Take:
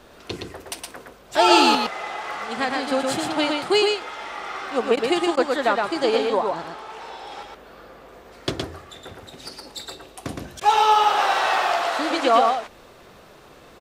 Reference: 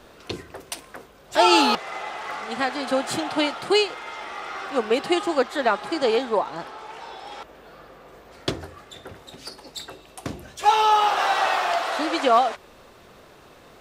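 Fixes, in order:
repair the gap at 0:04.96/0:05.36/0:10.60, 10 ms
echo removal 116 ms −3.5 dB

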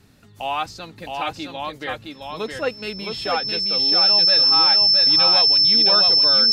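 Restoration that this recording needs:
notch filter 5,300 Hz, Q 30
echo removal 665 ms −4 dB

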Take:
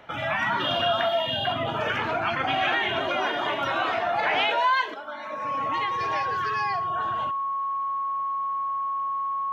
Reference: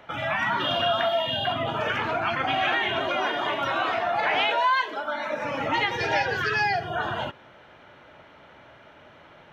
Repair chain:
notch filter 1,100 Hz, Q 30
echo removal 115 ms −24 dB
level correction +7 dB, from 0:04.94

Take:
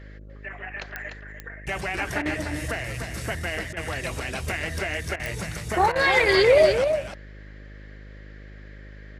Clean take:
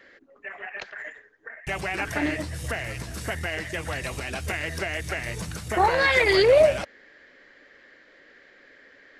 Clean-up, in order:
click removal
hum removal 51.3 Hz, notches 12
repair the gap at 0:02.22/0:03.73/0:05.16/0:05.92, 35 ms
echo removal 297 ms −7 dB

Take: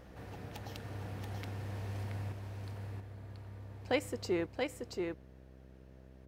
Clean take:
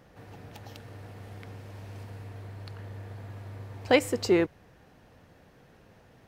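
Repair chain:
hum removal 64.8 Hz, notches 10
echo removal 680 ms −4 dB
level correction +10.5 dB, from 0:02.32

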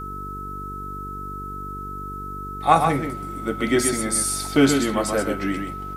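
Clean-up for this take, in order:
hum removal 48.6 Hz, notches 9
notch filter 1,300 Hz, Q 30
downward expander −24 dBFS, range −21 dB
echo removal 128 ms −6 dB

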